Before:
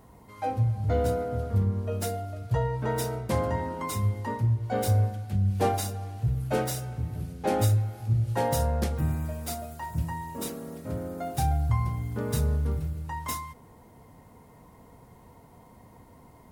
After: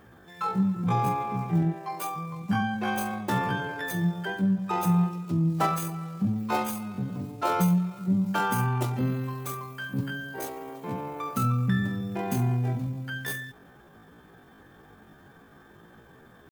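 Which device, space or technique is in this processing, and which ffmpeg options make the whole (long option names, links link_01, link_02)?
chipmunk voice: -filter_complex "[0:a]asplit=3[link_01][link_02][link_03];[link_01]afade=type=out:start_time=1.73:duration=0.02[link_04];[link_02]highpass=260,afade=type=in:start_time=1.73:duration=0.02,afade=type=out:start_time=2.16:duration=0.02[link_05];[link_03]afade=type=in:start_time=2.16:duration=0.02[link_06];[link_04][link_05][link_06]amix=inputs=3:normalize=0,asetrate=74167,aresample=44100,atempo=0.594604"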